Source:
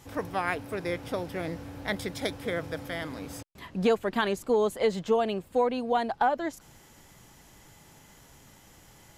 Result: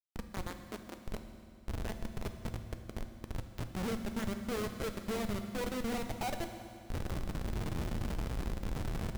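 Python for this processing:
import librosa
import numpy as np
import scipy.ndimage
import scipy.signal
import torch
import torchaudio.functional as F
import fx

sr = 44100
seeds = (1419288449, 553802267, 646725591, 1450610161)

y = fx.recorder_agc(x, sr, target_db=-21.0, rise_db_per_s=56.0, max_gain_db=30)
y = fx.band_shelf(y, sr, hz=800.0, db=-16.0, octaves=1.3, at=(2.93, 4.27))
y = fx.schmitt(y, sr, flips_db=-23.0)
y = fx.brickwall_highpass(y, sr, low_hz=210.0, at=(0.47, 1.01))
y = fx.rev_fdn(y, sr, rt60_s=2.4, lf_ratio=1.2, hf_ratio=0.95, size_ms=27.0, drr_db=6.5)
y = y * librosa.db_to_amplitude(-6.5)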